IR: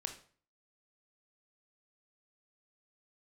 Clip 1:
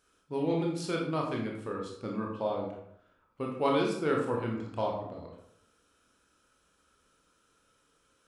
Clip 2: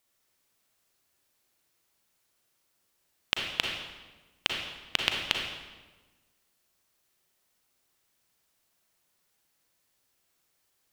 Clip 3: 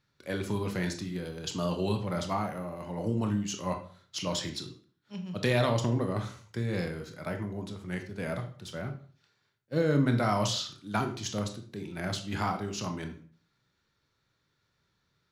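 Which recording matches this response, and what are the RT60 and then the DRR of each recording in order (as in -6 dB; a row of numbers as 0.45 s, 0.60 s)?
3; 0.70 s, 1.3 s, 0.45 s; -1.0 dB, 1.0 dB, 5.0 dB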